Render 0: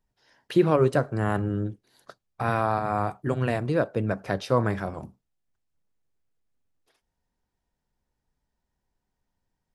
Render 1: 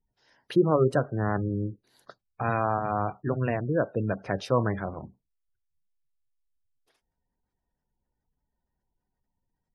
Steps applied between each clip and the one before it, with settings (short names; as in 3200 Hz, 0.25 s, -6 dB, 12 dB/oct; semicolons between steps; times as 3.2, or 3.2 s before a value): spectral gate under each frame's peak -25 dB strong; gain -1.5 dB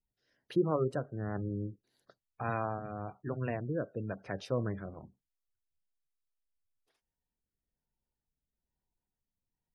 rotary speaker horn 1.1 Hz; gain -7 dB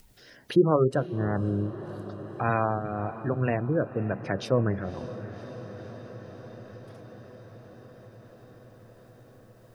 diffused feedback echo 0.554 s, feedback 64%, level -15.5 dB; in parallel at -3 dB: upward compressor, threshold -36 dBFS; on the sum: gain +4 dB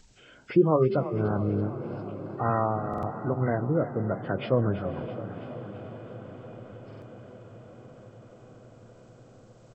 nonlinear frequency compression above 1100 Hz 1.5:1; frequency-shifting echo 0.331 s, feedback 59%, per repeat +33 Hz, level -13 dB; stuck buffer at 2.89/6.88, samples 2048, times 2